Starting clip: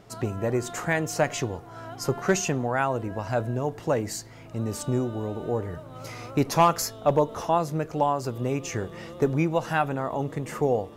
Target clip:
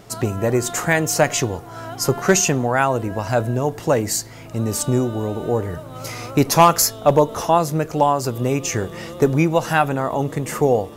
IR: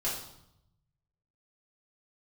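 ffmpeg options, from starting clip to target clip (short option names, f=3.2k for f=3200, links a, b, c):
-af "highshelf=f=5.9k:g=9,volume=7dB"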